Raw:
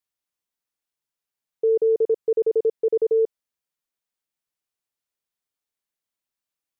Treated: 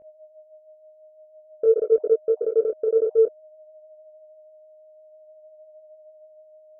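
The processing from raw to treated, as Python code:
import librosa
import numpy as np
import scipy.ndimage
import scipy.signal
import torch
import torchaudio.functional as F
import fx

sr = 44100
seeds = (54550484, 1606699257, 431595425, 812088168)

p1 = fx.spec_dropout(x, sr, seeds[0], share_pct=34)
p2 = np.clip(p1, -10.0 ** (-20.0 / 20.0), 10.0 ** (-20.0 / 20.0))
p3 = fx.dynamic_eq(p2, sr, hz=170.0, q=1.5, threshold_db=-48.0, ratio=4.0, max_db=-7)
p4 = fx.filter_sweep_lowpass(p3, sr, from_hz=620.0, to_hz=170.0, start_s=4.76, end_s=5.52, q=4.6)
p5 = 10.0 ** (-13.5 / 20.0) * np.tanh(p4 / 10.0 ** (-13.5 / 20.0))
p6 = p4 + (p5 * 10.0 ** (-4.5 / 20.0))
p7 = p6 + 10.0 ** (-41.0 / 20.0) * np.sin(2.0 * np.pi * 620.0 * np.arange(len(p6)) / sr)
p8 = fx.air_absorb(p7, sr, metres=400.0)
y = fx.detune_double(p8, sr, cents=18)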